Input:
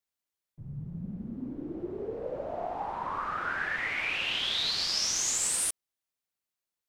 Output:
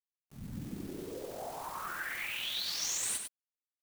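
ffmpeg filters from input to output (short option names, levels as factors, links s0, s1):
-filter_complex "[0:a]acrossover=split=4500[s0][s1];[s1]acompressor=threshold=0.0178:ratio=4:attack=1:release=60[s2];[s0][s2]amix=inputs=2:normalize=0,highshelf=f=8500:g=-9.5,bandreject=f=5000:w=9.1,alimiter=level_in=2:limit=0.0631:level=0:latency=1:release=355,volume=0.501,afftfilt=real='hypot(re,im)*cos(2*PI*random(0))':imag='hypot(re,im)*sin(2*PI*random(1))':win_size=512:overlap=0.75,flanger=delay=5.4:depth=5.5:regen=74:speed=0.3:shape=sinusoidal,aeval=exprs='val(0)*gte(abs(val(0)),0.00119)':c=same,dynaudnorm=f=110:g=13:m=2.37,atempo=1.8,crystalizer=i=3:c=0,asplit=2[s3][s4];[s4]aecho=0:1:100:0.473[s5];[s3][s5]amix=inputs=2:normalize=0"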